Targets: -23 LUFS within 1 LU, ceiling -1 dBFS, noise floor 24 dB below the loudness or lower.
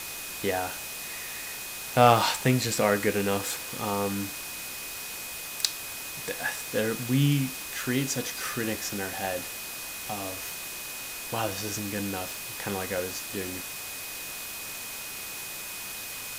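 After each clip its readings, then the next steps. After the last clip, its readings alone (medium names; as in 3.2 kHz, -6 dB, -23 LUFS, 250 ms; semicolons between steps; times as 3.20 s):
steady tone 2.5 kHz; tone level -43 dBFS; noise floor -38 dBFS; noise floor target -54 dBFS; loudness -29.5 LUFS; peak level -5.0 dBFS; loudness target -23.0 LUFS
-> band-stop 2.5 kHz, Q 30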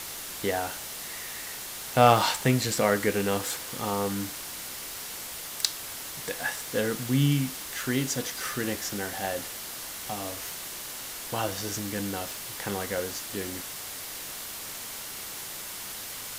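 steady tone not found; noise floor -39 dBFS; noise floor target -54 dBFS
-> noise reduction 15 dB, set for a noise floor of -39 dBFS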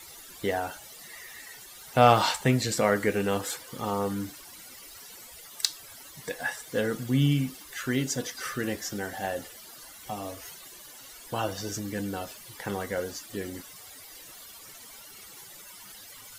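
noise floor -48 dBFS; noise floor target -53 dBFS
-> noise reduction 6 dB, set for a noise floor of -48 dBFS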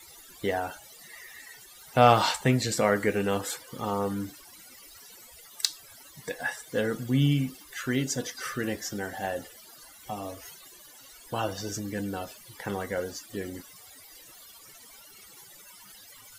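noise floor -51 dBFS; noise floor target -53 dBFS
-> noise reduction 6 dB, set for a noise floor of -51 dBFS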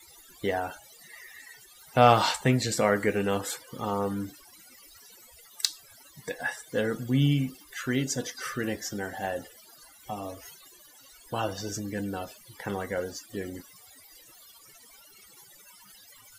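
noise floor -54 dBFS; loudness -29.0 LUFS; peak level -5.0 dBFS; loudness target -23.0 LUFS
-> trim +6 dB; peak limiter -1 dBFS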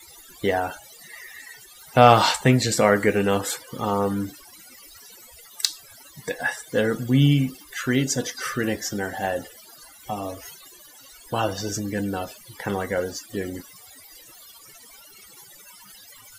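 loudness -23.5 LUFS; peak level -1.0 dBFS; noise floor -48 dBFS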